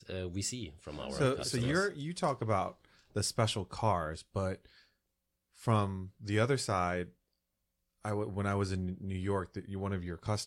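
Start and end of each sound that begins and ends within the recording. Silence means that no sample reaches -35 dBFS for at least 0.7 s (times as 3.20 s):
5.67–7.03 s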